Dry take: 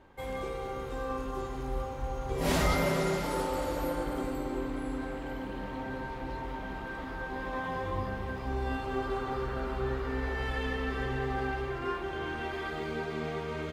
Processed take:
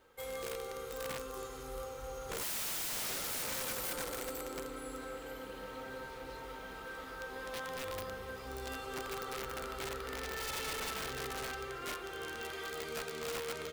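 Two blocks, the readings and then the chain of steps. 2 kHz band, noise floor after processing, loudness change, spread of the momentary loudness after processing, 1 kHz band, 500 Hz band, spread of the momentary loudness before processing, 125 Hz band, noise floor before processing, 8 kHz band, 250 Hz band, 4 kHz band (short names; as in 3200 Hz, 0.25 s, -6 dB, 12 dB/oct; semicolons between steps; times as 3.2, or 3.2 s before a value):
-5.0 dB, -47 dBFS, -6.0 dB, 10 LU, -8.0 dB, -7.5 dB, 8 LU, -15.5 dB, -39 dBFS, +5.5 dB, -13.5 dB, +1.0 dB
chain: pre-emphasis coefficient 0.9; small resonant body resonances 480/1300 Hz, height 15 dB, ringing for 50 ms; wrapped overs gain 39 dB; gain +6 dB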